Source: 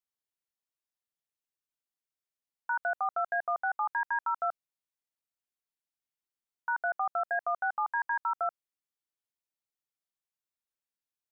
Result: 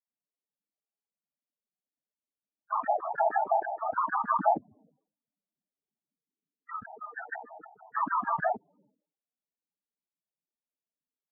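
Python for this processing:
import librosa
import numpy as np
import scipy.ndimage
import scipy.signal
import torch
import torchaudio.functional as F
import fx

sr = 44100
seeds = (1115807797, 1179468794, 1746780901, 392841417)

y = fx.wiener(x, sr, points=25)
y = fx.dispersion(y, sr, late='lows', ms=55.0, hz=680.0)
y = fx.env_lowpass_down(y, sr, base_hz=1400.0, full_db=-28.5)
y = y + 0.93 * np.pad(y, (int(4.4 * sr / 1000.0), 0))[:len(y)]
y = fx.noise_vocoder(y, sr, seeds[0], bands=12)
y = fx.spec_topn(y, sr, count=8)
y = fx.low_shelf(y, sr, hz=390.0, db=11.0, at=(4.13, 6.98))
y = fx.spec_box(y, sr, start_s=6.13, length_s=1.83, low_hz=490.0, high_hz=1200.0, gain_db=-23)
y = fx.sustainer(y, sr, db_per_s=120.0)
y = y * librosa.db_to_amplitude(4.0)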